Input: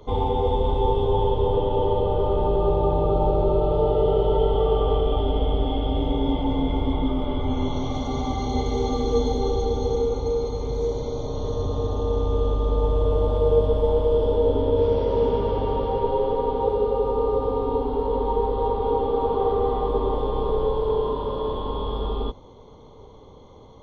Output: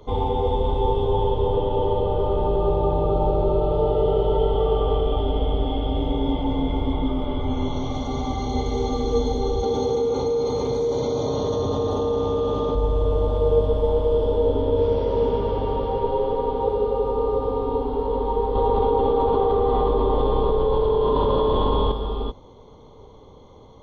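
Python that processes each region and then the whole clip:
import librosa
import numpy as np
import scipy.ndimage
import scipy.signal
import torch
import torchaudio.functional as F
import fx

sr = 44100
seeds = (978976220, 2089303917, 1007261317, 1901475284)

y = fx.chain(x, sr, fx.highpass(hz=130.0, slope=12),
    fx.resample_bad(factor=2, down='none', up='filtered'),
    fx.env_flatten(amount_pct=70), at=(9.63, 12.75))
y = fx.chain(y, sr, fx.cheby1_lowpass(hz=4400.0, order=3),
    fx.env_flatten(amount_pct=100), at=(18.55, 21.92))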